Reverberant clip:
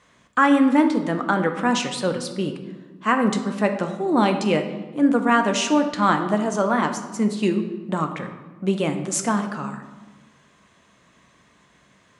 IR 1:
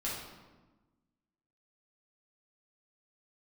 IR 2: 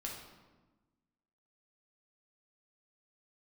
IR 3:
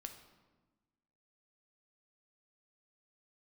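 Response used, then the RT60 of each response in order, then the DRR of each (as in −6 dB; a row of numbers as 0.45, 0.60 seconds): 3; 1.2, 1.2, 1.2 seconds; −7.5, −2.5, 5.5 decibels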